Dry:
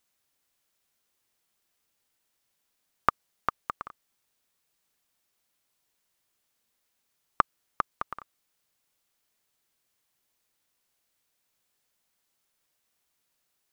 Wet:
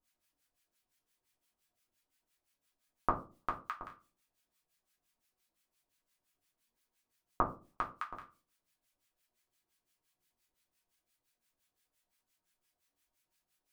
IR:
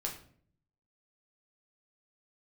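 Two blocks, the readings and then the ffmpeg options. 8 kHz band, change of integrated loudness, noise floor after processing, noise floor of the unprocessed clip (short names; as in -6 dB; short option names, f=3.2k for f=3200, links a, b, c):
n/a, -6.5 dB, under -85 dBFS, -78 dBFS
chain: -filter_complex "[0:a]acrossover=split=1100[a][b];[a]aeval=exprs='val(0)*(1-1/2+1/2*cos(2*PI*5.8*n/s))':c=same[c];[b]aeval=exprs='val(0)*(1-1/2-1/2*cos(2*PI*5.8*n/s))':c=same[d];[c][d]amix=inputs=2:normalize=0[e];[1:a]atrim=start_sample=2205,asetrate=88200,aresample=44100[f];[e][f]afir=irnorm=-1:irlink=0,volume=4.5dB"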